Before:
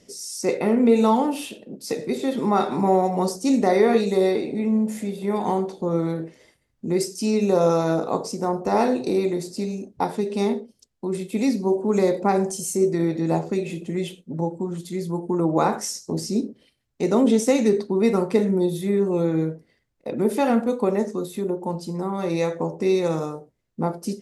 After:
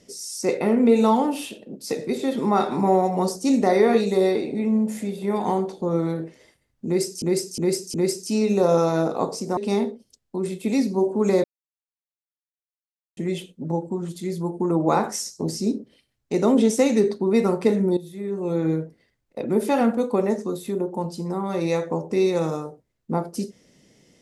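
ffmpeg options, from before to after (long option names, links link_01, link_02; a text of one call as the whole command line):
ffmpeg -i in.wav -filter_complex "[0:a]asplit=8[link_01][link_02][link_03][link_04][link_05][link_06][link_07][link_08];[link_01]atrim=end=7.222[link_09];[link_02]atrim=start=6.858:end=7.222[link_10];[link_03]atrim=start=6.858:end=7.222[link_11];[link_04]atrim=start=6.858:end=8.492[link_12];[link_05]atrim=start=10.258:end=12.13,asetpts=PTS-STARTPTS,afade=type=out:start_time=1.868:duration=0.004:curve=hsin[link_13];[link_06]atrim=start=12.13:end=13.86,asetpts=PTS-STARTPTS,volume=0[link_14];[link_07]atrim=start=13.86:end=18.66,asetpts=PTS-STARTPTS,afade=type=in:duration=0.004:curve=hsin,afade=type=out:start_time=4.796:duration=0.004:curve=hsin:silence=0.237137[link_15];[link_08]atrim=start=18.66,asetpts=PTS-STARTPTS,afade=type=in:duration=0.68:curve=qua:silence=0.237137[link_16];[link_09][link_10]acrossfade=duration=0.004:curve1=hsin:curve2=hsin[link_17];[link_17][link_11]acrossfade=duration=0.004:curve1=hsin:curve2=hsin[link_18];[link_18][link_12]acrossfade=duration=0.004:curve1=hsin:curve2=hsin[link_19];[link_13][link_14][link_15][link_16]concat=n=4:v=0:a=1[link_20];[link_19][link_20]acrossfade=duration=0.004:curve1=hsin:curve2=hsin" out.wav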